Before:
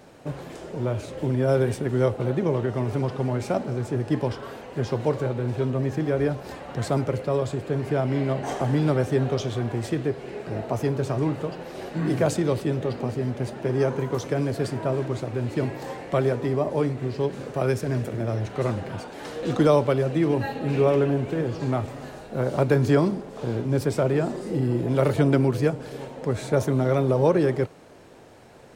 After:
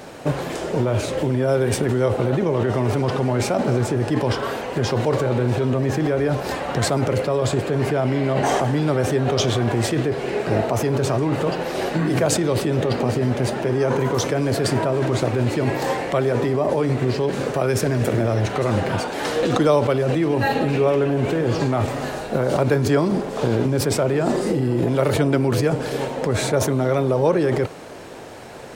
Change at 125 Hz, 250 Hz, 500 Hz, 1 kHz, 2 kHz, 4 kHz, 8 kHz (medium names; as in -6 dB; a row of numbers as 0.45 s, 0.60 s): +3.5 dB, +4.0 dB, +4.5 dB, +7.0 dB, +7.5 dB, +10.5 dB, +12.0 dB